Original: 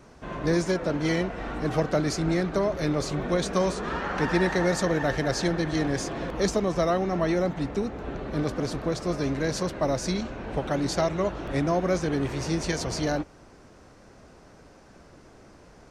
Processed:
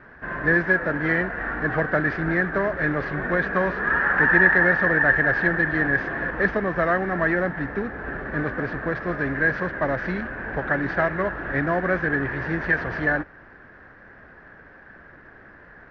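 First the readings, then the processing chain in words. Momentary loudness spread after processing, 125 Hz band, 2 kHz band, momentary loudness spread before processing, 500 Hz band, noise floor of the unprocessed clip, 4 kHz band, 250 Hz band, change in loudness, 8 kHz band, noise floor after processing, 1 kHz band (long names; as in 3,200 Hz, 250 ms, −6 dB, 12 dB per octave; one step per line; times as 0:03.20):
10 LU, 0.0 dB, +15.0 dB, 6 LU, +0.5 dB, −52 dBFS, below −10 dB, 0.0 dB, +5.0 dB, below −25 dB, −48 dBFS, +4.0 dB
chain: variable-slope delta modulation 32 kbit/s
low-pass with resonance 1,700 Hz, resonance Q 10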